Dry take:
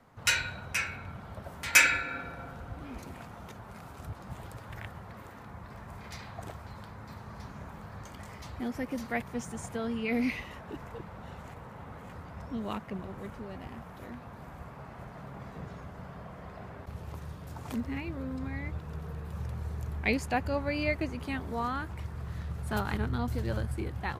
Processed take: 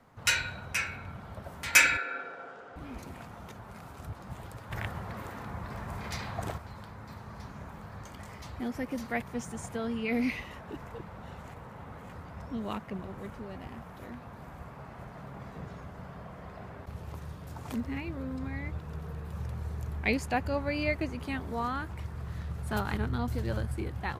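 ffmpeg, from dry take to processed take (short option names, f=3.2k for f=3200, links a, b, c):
-filter_complex "[0:a]asettb=1/sr,asplit=3[a][b][c];[a]atrim=end=1.974[d];[b]atrim=start=1.97:end=2.76,asetpts=PTS-STARTPTS,afade=t=in:d=0.004:c=qsin,afade=t=out:st=0.786:d=0.004:c=qsin,highpass=410,equalizer=f=430:t=q:w=4:g=8,equalizer=f=970:t=q:w=4:g=-4,equalizer=f=1.5k:t=q:w=4:g=3,equalizer=f=2.3k:t=q:w=4:g=-3,equalizer=f=4.1k:t=q:w=4:g=-5,equalizer=f=6k:t=q:w=4:g=-4,lowpass=f=6.9k:w=0.5412,lowpass=f=6.9k:w=1.3066[e];[c]atrim=start=2.756[f];[d][e]acrossfade=d=0.004:c1=hsin:c2=qsin[g];[g][f]acrossfade=d=0.004:c1=qsin:c2=hsin,asettb=1/sr,asplit=3[h][i][j];[h]atrim=end=4.714[k];[i]atrim=start=4.71:end=6.58,asetpts=PTS-STARTPTS,afade=t=in:d=0.004:c=qsin,afade=t=out:st=1.866:d=0.004:c=qsin,acontrast=62[l];[j]atrim=start=6.576[m];[k][l]acrossfade=d=0.004:c1=hsin:c2=qsin[n];[n][m]acrossfade=d=0.004:c1=qsin:c2=hsin"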